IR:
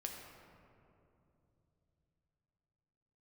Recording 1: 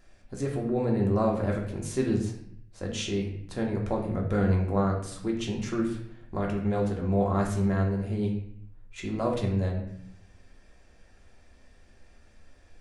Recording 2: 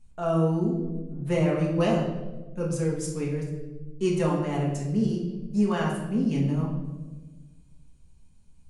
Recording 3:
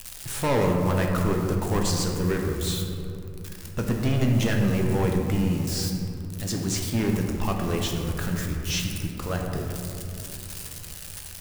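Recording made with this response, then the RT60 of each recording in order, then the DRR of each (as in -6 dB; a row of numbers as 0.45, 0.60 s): 3; 0.65, 1.3, 2.9 s; -1.5, -3.5, 0.5 dB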